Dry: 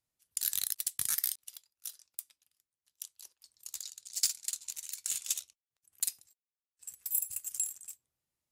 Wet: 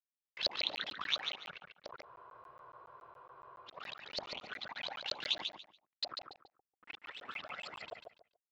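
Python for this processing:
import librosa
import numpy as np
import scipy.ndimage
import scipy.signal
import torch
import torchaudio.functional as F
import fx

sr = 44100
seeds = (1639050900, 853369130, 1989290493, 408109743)

y = fx.delta_hold(x, sr, step_db=-45.0)
y = scipy.signal.sosfilt(scipy.signal.butter(2, 280.0, 'highpass', fs=sr, output='sos'), y)
y = fx.high_shelf_res(y, sr, hz=6900.0, db=-7.0, q=1.5)
y = fx.transient(y, sr, attack_db=-8, sustain_db=0)
y = fx.env_flanger(y, sr, rest_ms=4.3, full_db=-38.0)
y = fx.filter_lfo_lowpass(y, sr, shape='saw_up', hz=4.3, low_hz=570.0, high_hz=4600.0, q=7.7)
y = fx.air_absorb(y, sr, metres=190.0)
y = fx.echo_feedback(y, sr, ms=143, feedback_pct=21, wet_db=-6.0)
y = fx.spec_freeze(y, sr, seeds[0], at_s=2.06, hold_s=1.63)
y = fx.buffer_crackle(y, sr, first_s=0.34, period_s=0.14, block=512, kind='zero')
y = y * 10.0 ** (10.0 / 20.0)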